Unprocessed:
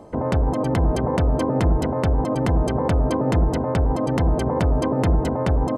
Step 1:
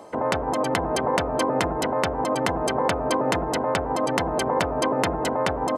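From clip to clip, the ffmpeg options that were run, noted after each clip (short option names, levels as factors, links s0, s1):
-af "highpass=f=1100:p=1,volume=2.37"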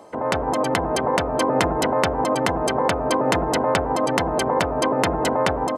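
-af "dynaudnorm=f=200:g=3:m=3.76,volume=0.841"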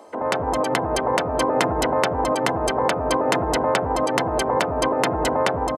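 -filter_complex "[0:a]acrossover=split=190[s0][s1];[s0]adelay=70[s2];[s2][s1]amix=inputs=2:normalize=0"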